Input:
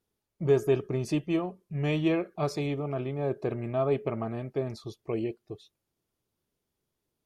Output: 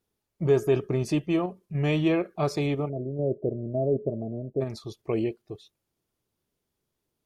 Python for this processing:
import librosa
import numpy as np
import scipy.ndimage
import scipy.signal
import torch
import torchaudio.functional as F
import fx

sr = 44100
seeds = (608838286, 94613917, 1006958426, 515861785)

p1 = fx.ellip_lowpass(x, sr, hz=610.0, order=4, stop_db=60, at=(2.88, 4.6), fade=0.02)
p2 = fx.level_steps(p1, sr, step_db=16)
y = p1 + (p2 * 10.0 ** (-2.0 / 20.0))